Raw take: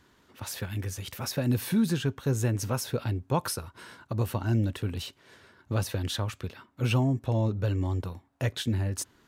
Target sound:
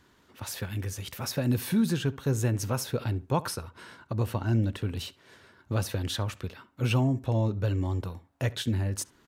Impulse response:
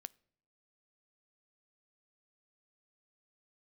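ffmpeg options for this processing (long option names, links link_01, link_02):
-filter_complex "[0:a]asettb=1/sr,asplit=3[link_01][link_02][link_03];[link_01]atrim=end=3.414[link_04];[link_02]atrim=start=3.41:end=4.93,asetpts=PTS-STARTPTS,afade=type=in:duration=0.004:curve=qsin,afade=type=out:start_time=1.516:duration=0.004:curve=qsin,highshelf=frequency=8200:gain=-6.5[link_05];[link_03]atrim=start=4.926[link_06];[link_04][link_05]acrossfade=duration=0.004:curve1=hsin:curve2=qsin[link_07];[link_07][link_06]acrossfade=duration=0.004:curve1=qsin:curve2=hsin,asplit=2[link_08][link_09];[link_09]adelay=70,lowpass=frequency=2700:poles=1,volume=-19.5dB,asplit=2[link_10][link_11];[link_11]adelay=70,lowpass=frequency=2700:poles=1,volume=0.27[link_12];[link_10][link_12]amix=inputs=2:normalize=0[link_13];[link_08][link_13]amix=inputs=2:normalize=0"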